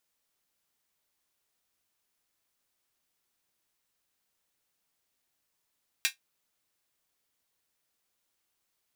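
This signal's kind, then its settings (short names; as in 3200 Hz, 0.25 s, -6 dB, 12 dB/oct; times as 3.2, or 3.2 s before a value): closed hi-hat, high-pass 2100 Hz, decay 0.13 s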